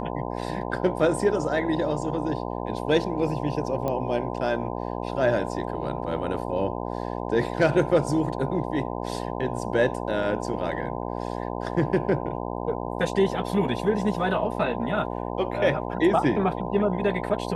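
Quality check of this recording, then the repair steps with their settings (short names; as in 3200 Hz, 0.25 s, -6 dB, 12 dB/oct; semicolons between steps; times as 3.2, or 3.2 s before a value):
buzz 60 Hz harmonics 17 -31 dBFS
3.88 pop -16 dBFS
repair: de-click; de-hum 60 Hz, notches 17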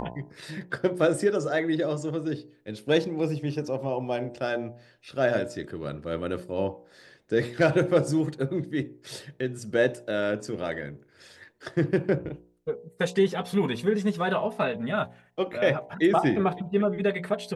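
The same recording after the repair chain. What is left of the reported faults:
none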